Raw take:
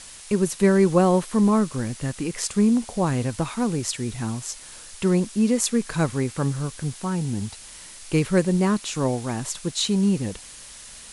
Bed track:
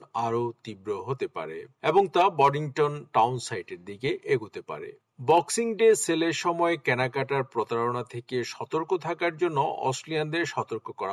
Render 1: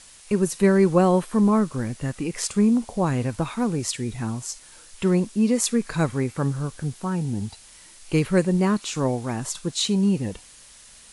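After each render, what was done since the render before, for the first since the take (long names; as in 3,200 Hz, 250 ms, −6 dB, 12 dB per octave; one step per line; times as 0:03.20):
noise reduction from a noise print 6 dB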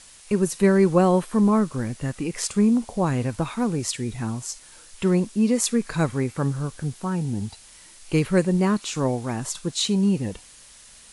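no processing that can be heard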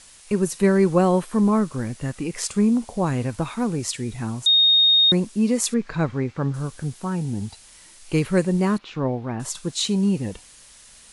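0:04.46–0:05.12: beep over 3,710 Hz −12.5 dBFS
0:05.74–0:06.54: high-frequency loss of the air 150 metres
0:08.78–0:09.40: high-frequency loss of the air 320 metres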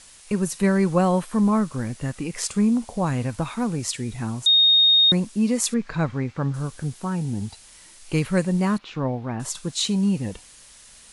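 dynamic equaliser 380 Hz, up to −6 dB, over −34 dBFS, Q 2.3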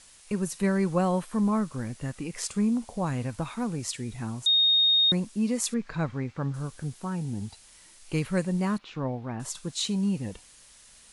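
level −5.5 dB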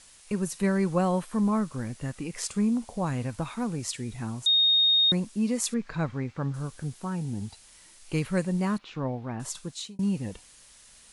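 0:09.57–0:09.99: fade out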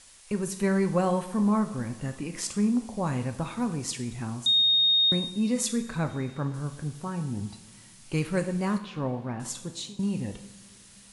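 coupled-rooms reverb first 0.64 s, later 3.1 s, from −17 dB, DRR 7.5 dB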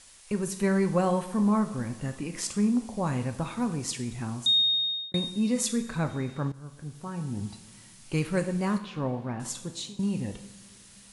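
0:04.53–0:05.14: fade out
0:06.52–0:07.46: fade in, from −14 dB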